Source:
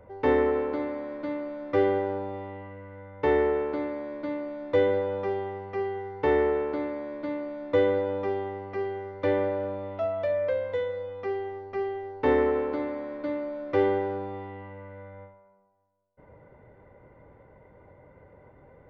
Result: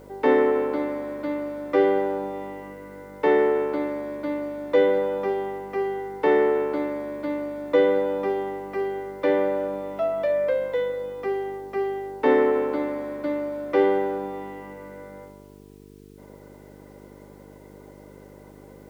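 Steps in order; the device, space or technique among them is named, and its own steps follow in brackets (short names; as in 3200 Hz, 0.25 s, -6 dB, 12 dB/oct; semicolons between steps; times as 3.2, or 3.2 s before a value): steep high-pass 160 Hz 96 dB/oct; video cassette with head-switching buzz (buzz 50 Hz, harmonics 9, -52 dBFS 0 dB/oct; white noise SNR 39 dB); gain +4 dB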